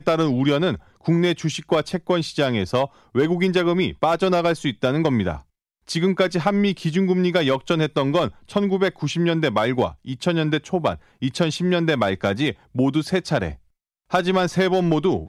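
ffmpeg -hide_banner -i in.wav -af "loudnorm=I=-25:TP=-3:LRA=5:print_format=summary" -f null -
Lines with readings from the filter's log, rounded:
Input Integrated:    -21.6 LUFS
Input True Peak:      -4.8 dBTP
Input LRA:             1.1 LU
Input Threshold:     -31.7 LUFS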